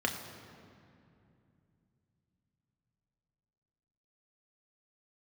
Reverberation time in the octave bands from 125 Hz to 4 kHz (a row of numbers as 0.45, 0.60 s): 4.9, 3.9, 2.8, 2.4, 2.2, 1.6 s